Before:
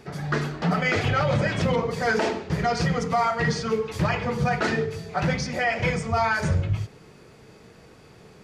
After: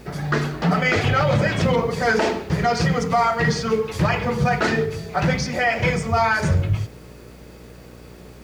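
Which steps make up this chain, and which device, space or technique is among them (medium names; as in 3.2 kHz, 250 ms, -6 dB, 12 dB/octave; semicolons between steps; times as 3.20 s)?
video cassette with head-switching buzz (mains buzz 60 Hz, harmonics 10, -48 dBFS -4 dB/octave; white noise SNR 38 dB); trim +4 dB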